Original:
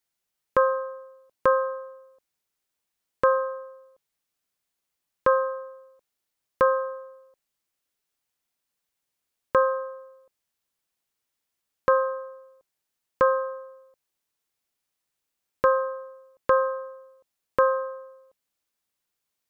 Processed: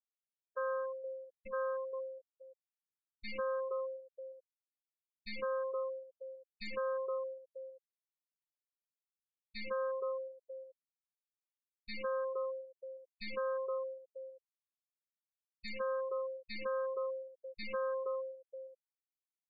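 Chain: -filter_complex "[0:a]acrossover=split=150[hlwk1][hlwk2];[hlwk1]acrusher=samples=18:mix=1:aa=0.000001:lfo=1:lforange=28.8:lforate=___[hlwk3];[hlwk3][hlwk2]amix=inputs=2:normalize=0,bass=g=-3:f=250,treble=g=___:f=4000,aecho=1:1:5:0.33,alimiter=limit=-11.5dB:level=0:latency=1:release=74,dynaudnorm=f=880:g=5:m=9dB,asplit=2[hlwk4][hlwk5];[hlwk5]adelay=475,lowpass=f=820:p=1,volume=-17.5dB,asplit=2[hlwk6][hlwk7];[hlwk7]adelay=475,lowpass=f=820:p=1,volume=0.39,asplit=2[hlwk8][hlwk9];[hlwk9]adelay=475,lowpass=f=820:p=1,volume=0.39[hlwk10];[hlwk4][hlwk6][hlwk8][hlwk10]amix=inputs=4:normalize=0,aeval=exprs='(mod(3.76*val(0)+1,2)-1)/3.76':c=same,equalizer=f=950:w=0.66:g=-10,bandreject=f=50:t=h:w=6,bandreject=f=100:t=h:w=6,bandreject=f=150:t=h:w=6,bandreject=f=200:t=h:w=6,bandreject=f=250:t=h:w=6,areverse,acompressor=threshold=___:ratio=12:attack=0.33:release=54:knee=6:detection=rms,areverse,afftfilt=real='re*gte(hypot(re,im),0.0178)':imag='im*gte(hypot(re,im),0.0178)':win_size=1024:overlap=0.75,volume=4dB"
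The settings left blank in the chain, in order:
1.1, 6, -34dB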